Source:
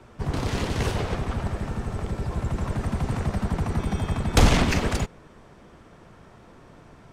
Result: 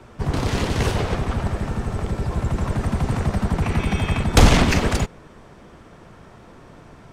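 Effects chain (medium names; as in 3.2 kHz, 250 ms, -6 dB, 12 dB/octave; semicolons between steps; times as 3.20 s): 3.62–4.24 s: peaking EQ 2.5 kHz +10 dB 0.76 oct; trim +4.5 dB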